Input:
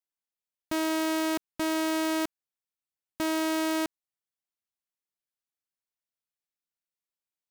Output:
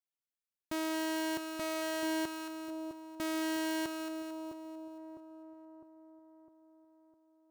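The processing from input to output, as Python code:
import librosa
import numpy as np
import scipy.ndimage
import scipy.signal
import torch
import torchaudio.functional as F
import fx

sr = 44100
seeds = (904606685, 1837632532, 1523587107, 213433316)

y = fx.echo_split(x, sr, split_hz=960.0, low_ms=656, high_ms=224, feedback_pct=52, wet_db=-6.5)
y = y * librosa.db_to_amplitude(-7.0)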